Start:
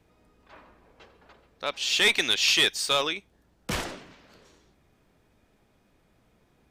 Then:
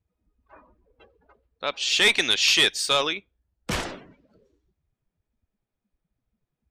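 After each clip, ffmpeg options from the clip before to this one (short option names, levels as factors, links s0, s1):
-af "afftdn=nr=25:nf=-48,volume=1.33"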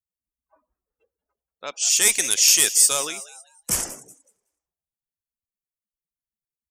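-filter_complex "[0:a]asplit=5[s0][s1][s2][s3][s4];[s1]adelay=186,afreqshift=120,volume=0.158[s5];[s2]adelay=372,afreqshift=240,volume=0.0733[s6];[s3]adelay=558,afreqshift=360,volume=0.0335[s7];[s4]adelay=744,afreqshift=480,volume=0.0155[s8];[s0][s5][s6][s7][s8]amix=inputs=5:normalize=0,aexciter=amount=13.2:drive=5:freq=5800,afftdn=nr=21:nf=-40,volume=0.562"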